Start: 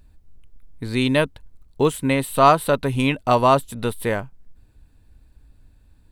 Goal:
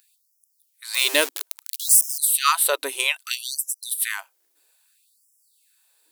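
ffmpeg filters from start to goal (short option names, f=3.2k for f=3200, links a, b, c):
-filter_complex "[0:a]asettb=1/sr,asplit=3[a][b][c];[a]atrim=end=0.944[d];[b]atrim=start=0.94:end=2.18,asetpts=PTS-STARTPTS,afade=t=in:d=0.004:c=qsin,afade=t=out:st=1.236:d=0.004:c=qsin,aeval=exprs='val(0)+0.5*0.0562*sgn(val(0))':c=same[e];[c]atrim=start=2.176[f];[d][e]acrossfade=d=0.004:c1=hsin:c2=qsin[g];[g][f]acrossfade=d=0.004:c1=qsin:c2=hsin,crystalizer=i=8:c=0,afftfilt=real='re*gte(b*sr/1024,280*pow(5100/280,0.5+0.5*sin(2*PI*0.61*pts/sr)))':imag='im*gte(b*sr/1024,280*pow(5100/280,0.5+0.5*sin(2*PI*0.61*pts/sr)))':win_size=1024:overlap=0.75,volume=-6.5dB"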